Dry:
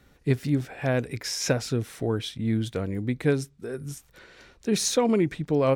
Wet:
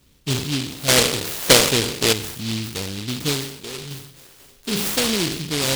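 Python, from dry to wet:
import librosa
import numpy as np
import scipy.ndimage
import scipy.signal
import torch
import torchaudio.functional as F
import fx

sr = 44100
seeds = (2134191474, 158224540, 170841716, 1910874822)

y = fx.spec_trails(x, sr, decay_s=0.78)
y = fx.peak_eq(y, sr, hz=550.0, db=12.5, octaves=1.8, at=(0.88, 2.13))
y = fx.comb(y, sr, ms=7.4, depth=0.64, at=(3.9, 4.72))
y = fx.noise_mod_delay(y, sr, seeds[0], noise_hz=3500.0, depth_ms=0.37)
y = y * librosa.db_to_amplitude(-1.0)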